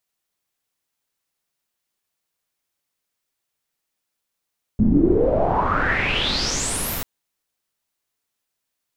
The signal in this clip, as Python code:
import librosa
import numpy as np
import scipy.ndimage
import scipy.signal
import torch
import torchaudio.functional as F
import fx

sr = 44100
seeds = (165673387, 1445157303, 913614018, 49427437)

y = fx.riser_noise(sr, seeds[0], length_s=2.24, colour='pink', kind='lowpass', start_hz=200.0, end_hz=16000.0, q=7.6, swell_db=-10.0, law='exponential')